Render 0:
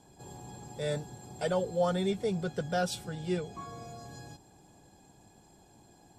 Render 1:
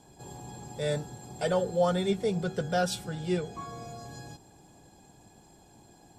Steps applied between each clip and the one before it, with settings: de-hum 94.71 Hz, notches 20; trim +3 dB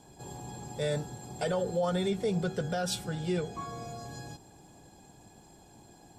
peak limiter -22.5 dBFS, peak gain reduction 8 dB; trim +1 dB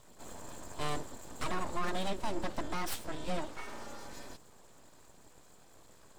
full-wave rectifier; trim -1.5 dB

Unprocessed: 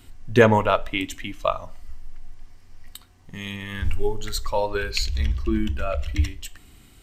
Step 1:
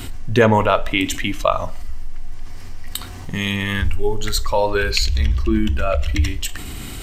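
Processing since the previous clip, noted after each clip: level flattener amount 50%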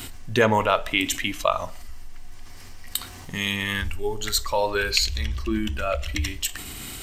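tilt EQ +1.5 dB/octave; trim -4 dB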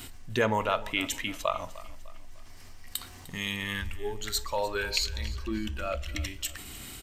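feedback delay 301 ms, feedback 43%, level -18 dB; trim -7 dB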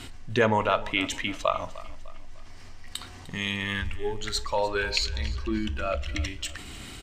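distance through air 66 m; trim +4 dB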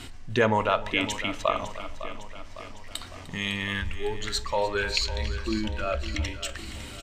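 feedback delay 555 ms, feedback 57%, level -13.5 dB

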